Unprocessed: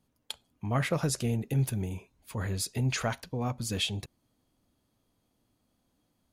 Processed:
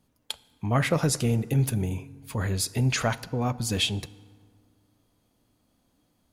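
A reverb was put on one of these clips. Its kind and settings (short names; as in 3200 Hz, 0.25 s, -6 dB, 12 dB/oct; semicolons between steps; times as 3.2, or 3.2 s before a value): FDN reverb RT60 2 s, low-frequency decay 1.05×, high-frequency decay 0.55×, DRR 18 dB; gain +5 dB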